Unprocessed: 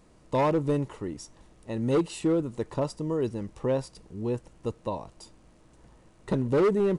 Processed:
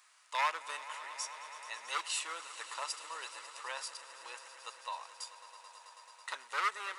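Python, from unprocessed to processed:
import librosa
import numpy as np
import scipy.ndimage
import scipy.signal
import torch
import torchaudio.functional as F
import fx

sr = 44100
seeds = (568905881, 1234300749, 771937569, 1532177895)

p1 = scipy.signal.sosfilt(scipy.signal.butter(4, 1200.0, 'highpass', fs=sr, output='sos'), x)
p2 = p1 + fx.echo_swell(p1, sr, ms=109, loudest=5, wet_db=-17.5, dry=0)
y = F.gain(torch.from_numpy(p2), 4.5).numpy()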